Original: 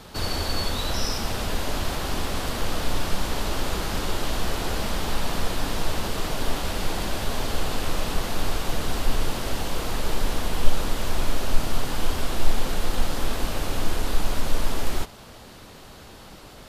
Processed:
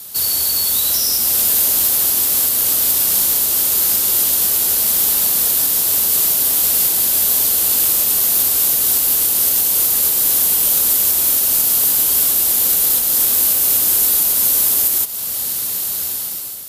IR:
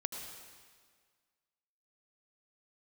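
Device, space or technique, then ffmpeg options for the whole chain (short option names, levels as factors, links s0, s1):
FM broadcast chain: -filter_complex "[0:a]highpass=68,dynaudnorm=f=730:g=3:m=4.47,acrossover=split=240|520[s0][s1][s2];[s0]acompressor=threshold=0.0282:ratio=4[s3];[s1]acompressor=threshold=0.0398:ratio=4[s4];[s2]acompressor=threshold=0.0562:ratio=4[s5];[s3][s4][s5]amix=inputs=3:normalize=0,aemphasis=mode=production:type=75fm,alimiter=limit=0.282:level=0:latency=1:release=475,asoftclip=type=hard:threshold=0.2,lowpass=f=15000:w=0.5412,lowpass=f=15000:w=1.3066,aemphasis=mode=production:type=75fm,volume=0.501"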